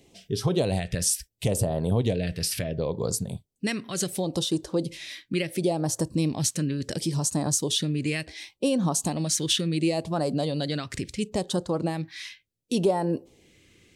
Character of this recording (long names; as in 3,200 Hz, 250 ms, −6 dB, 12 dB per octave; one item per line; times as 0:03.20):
phaser sweep stages 2, 0.71 Hz, lowest notch 790–2,100 Hz